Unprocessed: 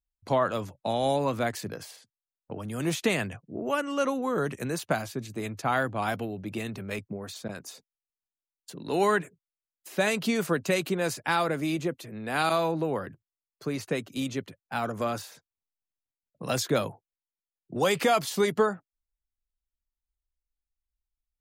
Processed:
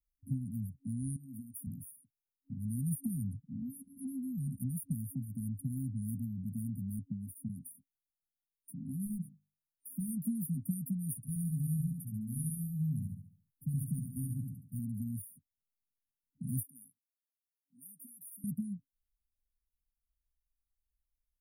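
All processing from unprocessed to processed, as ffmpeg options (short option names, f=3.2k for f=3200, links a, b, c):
-filter_complex "[0:a]asettb=1/sr,asplit=3[a][b][c];[a]atrim=end=1.164[d];[b]atrim=start=1.16:end=1.67,asetpts=PTS-STARTPTS,afade=t=in:d=0.004:c=qsin,afade=t=out:st=0.506:d=0.004:c=qsin,highpass=f=420:p=1,acompressor=threshold=-34dB:ratio=6:attack=3.2:release=140:knee=1:detection=peak[e];[c]atrim=start=1.666[f];[d][e]acrossfade=d=0.004:c1=hsin:c2=qsin[g];[g][f]acrossfade=d=0.004:c1=qsin:c2=hsin,asettb=1/sr,asplit=3[h][i][j];[h]atrim=end=9.054[k];[i]atrim=start=9.05:end=10.17,asetpts=PTS-STARTPTS,afade=t=in:d=0.004:c=qsin,afade=t=out:st=1.116:d=0.004:c=qsin,volume=17.5dB,asoftclip=hard,volume=-17.5dB,bandreject=f=50:t=h:w=6,bandreject=f=100:t=h:w=6,bandreject=f=150:t=h:w=6,bandreject=f=200:t=h:w=6,bandreject=f=250:t=h:w=6,bandreject=f=300:t=h:w=6,bandreject=f=350:t=h:w=6,bandreject=f=400:t=h:w=6[l];[j]atrim=start=10.166[m];[k][l]acrossfade=d=0.004:c1=hsin:c2=qsin[n];[n][m]acrossfade=d=0.004:c1=qsin:c2=hsin,asettb=1/sr,asplit=3[o][p][q];[o]atrim=end=11.164[r];[p]atrim=start=11.16:end=14.79,asetpts=PTS-STARTPTS,afade=t=in:d=0.004:c=qsin,afade=t=out:st=3.626:d=0.004:c=qsin,aecho=1:1:1.7:0.81,atrim=end_sample=160083,aecho=1:1:70|140|210|280|350:0.562|0.219|0.0855|0.0334|0.013,atrim=end_sample=160083[s];[q]atrim=start=14.786[t];[r][s]acrossfade=d=0.004:c1=hsin:c2=qsin[u];[u][t]acrossfade=d=0.004:c1=qsin:c2=hsin,asettb=1/sr,asplit=3[v][w][x];[v]atrim=end=16.634[y];[w]atrim=start=16.63:end=18.44,asetpts=PTS-STARTPTS,afade=t=in:d=0.004:c=qsin,afade=t=out:st=1.806:d=0.004:c=qsin,acrossover=split=3500[z][aa];[aa]acompressor=threshold=-42dB:ratio=4:attack=1:release=60[ab];[z][ab]amix=inputs=2:normalize=0,highpass=1.2k[ac];[x]atrim=start=18.436[ad];[y][ac]acrossfade=d=0.004:c1=hsin:c2=qsin[ae];[ae][ad]acrossfade=d=0.004:c1=qsin:c2=hsin,afftfilt=real='re*(1-between(b*sr/4096,270,9100))':imag='im*(1-between(b*sr/4096,270,9100))':win_size=4096:overlap=0.75,acrossover=split=180|3000[af][ag][ah];[ag]acompressor=threshold=-43dB:ratio=6[ai];[af][ai][ah]amix=inputs=3:normalize=0,volume=1dB"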